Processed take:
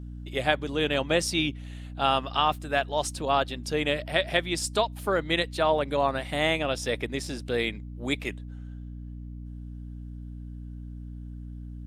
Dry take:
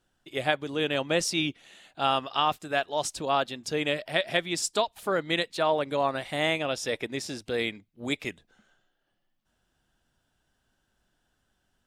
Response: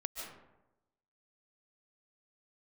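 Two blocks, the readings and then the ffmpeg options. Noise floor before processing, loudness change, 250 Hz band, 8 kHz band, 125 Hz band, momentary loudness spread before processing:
-76 dBFS, +1.5 dB, +2.0 dB, -1.0 dB, +6.0 dB, 7 LU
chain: -af "aeval=exprs='val(0)+0.0112*(sin(2*PI*60*n/s)+sin(2*PI*2*60*n/s)/2+sin(2*PI*3*60*n/s)/3+sin(2*PI*4*60*n/s)/4+sin(2*PI*5*60*n/s)/5)':c=same,volume=1.5dB" -ar 48000 -c:a libopus -b:a 48k

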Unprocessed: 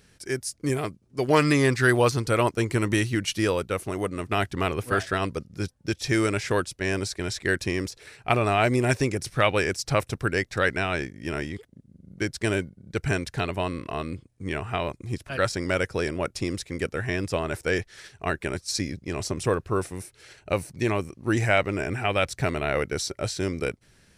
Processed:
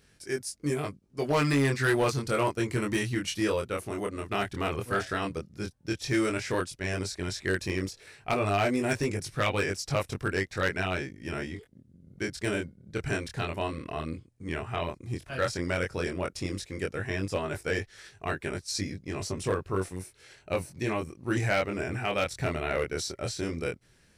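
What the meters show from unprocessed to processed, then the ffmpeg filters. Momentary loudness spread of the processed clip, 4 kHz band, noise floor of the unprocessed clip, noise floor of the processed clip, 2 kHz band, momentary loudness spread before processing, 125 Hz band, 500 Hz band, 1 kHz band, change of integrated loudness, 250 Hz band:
9 LU, -4.0 dB, -61 dBFS, -62 dBFS, -4.5 dB, 10 LU, -4.5 dB, -4.5 dB, -4.5 dB, -4.5 dB, -4.0 dB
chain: -af "flanger=delay=20:depth=5:speed=0.11,volume=18.5dB,asoftclip=hard,volume=-18.5dB,volume=-1dB"

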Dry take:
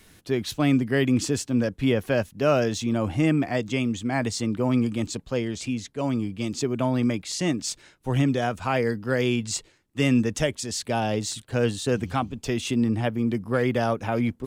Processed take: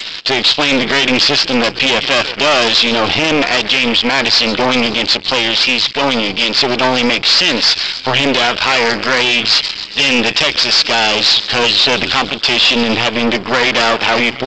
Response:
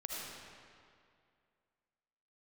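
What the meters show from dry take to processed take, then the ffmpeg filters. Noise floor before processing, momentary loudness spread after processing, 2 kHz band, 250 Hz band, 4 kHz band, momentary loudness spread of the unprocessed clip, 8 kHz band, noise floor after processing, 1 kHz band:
-59 dBFS, 4 LU, +19.5 dB, +5.0 dB, +25.5 dB, 6 LU, +9.0 dB, -26 dBFS, +15.0 dB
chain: -filter_complex "[0:a]asplit=2[a][b];[b]asplit=5[c][d][e][f][g];[c]adelay=138,afreqshift=-110,volume=-23.5dB[h];[d]adelay=276,afreqshift=-220,volume=-27.4dB[i];[e]adelay=414,afreqshift=-330,volume=-31.3dB[j];[f]adelay=552,afreqshift=-440,volume=-35.1dB[k];[g]adelay=690,afreqshift=-550,volume=-39dB[l];[h][i][j][k][l]amix=inputs=5:normalize=0[m];[a][m]amix=inputs=2:normalize=0,aexciter=amount=1.7:drive=8.7:freq=2.6k,aresample=11025,aeval=exprs='max(val(0),0)':c=same,aresample=44100,asplit=2[n][o];[o]highpass=f=720:p=1,volume=20dB,asoftclip=type=tanh:threshold=-7dB[p];[n][p]amix=inputs=2:normalize=0,lowpass=f=2.2k:p=1,volume=-6dB,crystalizer=i=8:c=0,acontrast=86,alimiter=level_in=8dB:limit=-1dB:release=50:level=0:latency=1,volume=-3.5dB" -ar 16000 -c:a g722

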